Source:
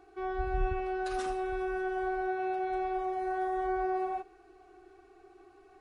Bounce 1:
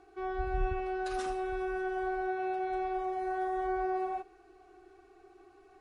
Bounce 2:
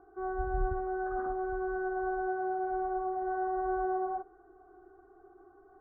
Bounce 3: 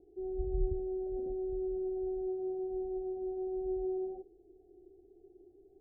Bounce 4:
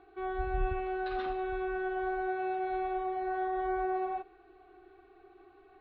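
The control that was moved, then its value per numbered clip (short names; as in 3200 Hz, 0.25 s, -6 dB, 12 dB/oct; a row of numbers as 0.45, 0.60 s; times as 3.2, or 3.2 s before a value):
elliptic low-pass, frequency: 12000, 1500, 560, 4000 Hz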